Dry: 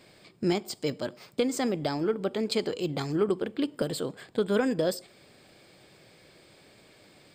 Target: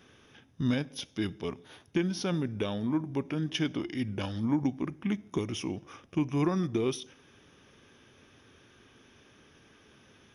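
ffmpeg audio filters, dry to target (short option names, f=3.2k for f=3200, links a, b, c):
-af "asetrate=31311,aresample=44100,volume=-2.5dB"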